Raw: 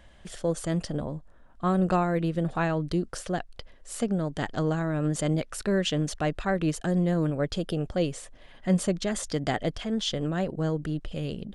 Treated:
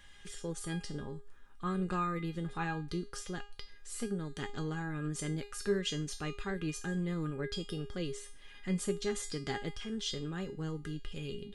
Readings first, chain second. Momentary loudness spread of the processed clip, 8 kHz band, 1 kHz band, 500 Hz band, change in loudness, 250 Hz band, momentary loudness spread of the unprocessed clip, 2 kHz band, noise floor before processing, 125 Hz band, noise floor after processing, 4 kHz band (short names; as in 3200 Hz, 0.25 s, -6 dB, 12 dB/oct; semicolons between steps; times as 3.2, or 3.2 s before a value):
9 LU, -5.5 dB, -9.0 dB, -10.0 dB, -9.5 dB, -10.0 dB, 8 LU, -6.5 dB, -53 dBFS, -10.0 dB, -52 dBFS, -6.0 dB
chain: bell 660 Hz -13.5 dB 0.6 oct; resonator 410 Hz, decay 0.32 s, harmonics all, mix 90%; mismatched tape noise reduction encoder only; gain +8.5 dB